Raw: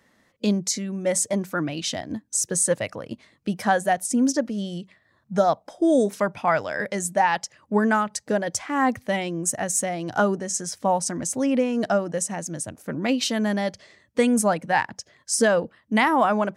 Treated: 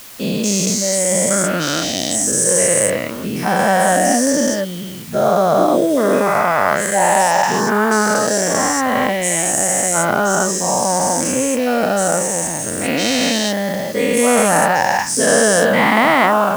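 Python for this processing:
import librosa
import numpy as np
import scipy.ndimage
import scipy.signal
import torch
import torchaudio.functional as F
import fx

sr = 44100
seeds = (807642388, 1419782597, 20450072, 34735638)

y = fx.spec_dilate(x, sr, span_ms=480)
y = fx.quant_dither(y, sr, seeds[0], bits=6, dither='triangular')
y = y * 10.0 ** (-1.0 / 20.0)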